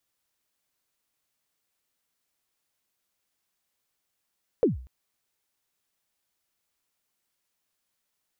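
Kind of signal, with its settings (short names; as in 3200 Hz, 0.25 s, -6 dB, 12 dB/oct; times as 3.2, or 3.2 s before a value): kick drum length 0.24 s, from 530 Hz, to 63 Hz, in 0.141 s, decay 0.45 s, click off, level -14.5 dB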